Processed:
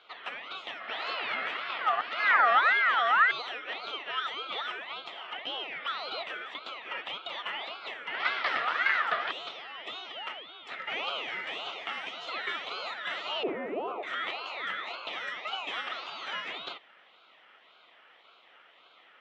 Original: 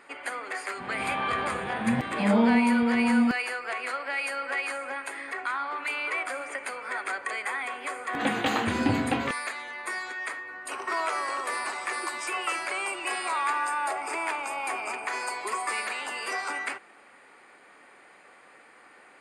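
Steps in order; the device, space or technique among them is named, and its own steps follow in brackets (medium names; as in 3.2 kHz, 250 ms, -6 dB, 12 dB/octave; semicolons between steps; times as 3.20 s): voice changer toy (ring modulator with a swept carrier 1.4 kHz, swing 35%, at 1.8 Hz; cabinet simulation 440–4600 Hz, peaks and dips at 690 Hz +4 dB, 1.3 kHz +10 dB, 1.9 kHz +7 dB, 3.1 kHz +4 dB); 13.43–14.03 s: FFT filter 100 Hz 0 dB, 380 Hz +15 dB, 3.9 kHz -22 dB; trim -5 dB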